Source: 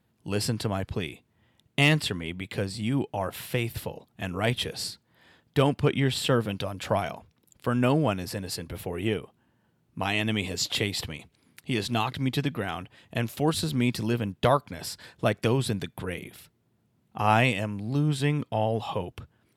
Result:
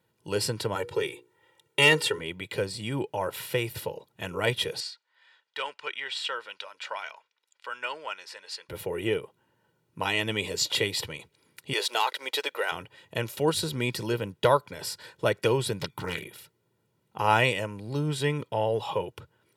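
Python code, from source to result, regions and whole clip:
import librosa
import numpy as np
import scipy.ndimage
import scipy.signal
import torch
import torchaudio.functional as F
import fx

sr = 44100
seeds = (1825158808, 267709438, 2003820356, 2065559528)

y = fx.chain(x, sr, fx.highpass(hz=160.0, slope=12),
    fx.hum_notches(base_hz=60, count=8),
    fx.comb(ms=2.2, depth=0.97), at=(0.75, 2.19))
y = fx.chain(y, sr, fx.highpass(hz=1300.0, slope=12),
    fx.air_absorb(metres=100.0), at=(4.8, 8.69))
y = fx.chain(y, sr, fx.highpass(hz=480.0, slope=24),
    fx.leveller(passes=1), at=(11.73, 12.72))
y = fx.chain(y, sr, fx.comb(ms=0.9, depth=0.88),
    fx.doppler_dist(depth_ms=0.81), at=(15.8, 16.23))
y = scipy.signal.sosfilt(scipy.signal.butter(2, 120.0, 'highpass', fs=sr, output='sos'), y)
y = fx.low_shelf(y, sr, hz=170.0, db=-4.0)
y = y + 0.6 * np.pad(y, (int(2.1 * sr / 1000.0), 0))[:len(y)]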